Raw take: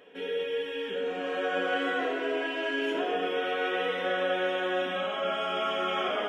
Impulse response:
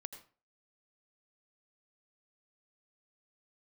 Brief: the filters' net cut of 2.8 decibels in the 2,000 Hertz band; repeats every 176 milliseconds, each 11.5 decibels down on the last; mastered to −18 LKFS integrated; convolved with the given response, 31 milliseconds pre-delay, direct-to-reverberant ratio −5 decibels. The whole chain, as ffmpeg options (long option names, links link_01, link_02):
-filter_complex "[0:a]equalizer=frequency=2000:width_type=o:gain=-4,aecho=1:1:176|352|528:0.266|0.0718|0.0194,asplit=2[link_01][link_02];[1:a]atrim=start_sample=2205,adelay=31[link_03];[link_02][link_03]afir=irnorm=-1:irlink=0,volume=9dB[link_04];[link_01][link_04]amix=inputs=2:normalize=0,volume=6dB"